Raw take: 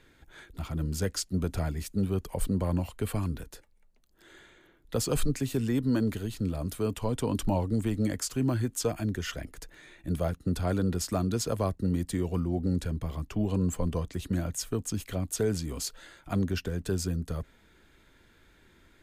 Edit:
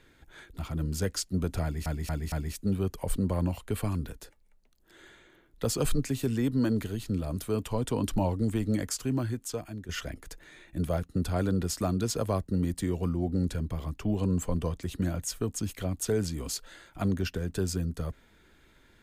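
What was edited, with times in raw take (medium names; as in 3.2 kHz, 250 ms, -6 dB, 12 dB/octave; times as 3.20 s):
1.63 s: stutter 0.23 s, 4 plays
8.21–9.20 s: fade out linear, to -12 dB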